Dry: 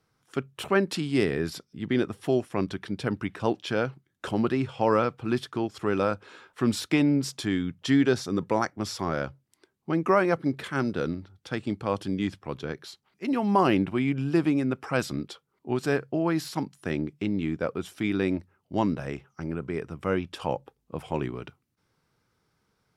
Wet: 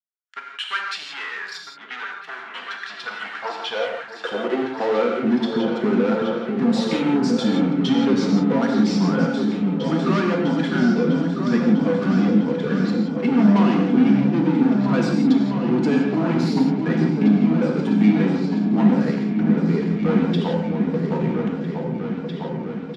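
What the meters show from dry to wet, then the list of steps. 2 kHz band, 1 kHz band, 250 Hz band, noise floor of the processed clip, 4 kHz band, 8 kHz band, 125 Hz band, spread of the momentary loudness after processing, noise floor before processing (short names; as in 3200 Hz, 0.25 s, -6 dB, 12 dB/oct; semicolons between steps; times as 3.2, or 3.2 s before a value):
+5.0 dB, +3.0 dB, +10.0 dB, -37 dBFS, +6.5 dB, n/a, +8.0 dB, 13 LU, -75 dBFS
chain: per-bin expansion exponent 1.5; HPF 60 Hz 6 dB/oct; bell 770 Hz -4 dB 0.77 oct; comb 4.2 ms, depth 40%; sample leveller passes 5; compressor, threshold -21 dBFS, peak gain reduction 7 dB; high-pass sweep 1500 Hz -> 200 Hz, 2.62–5.53; air absorption 150 m; repeats that get brighter 0.651 s, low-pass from 400 Hz, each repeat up 2 oct, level -3 dB; non-linear reverb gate 0.2 s flat, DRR 1 dB; gain -3 dB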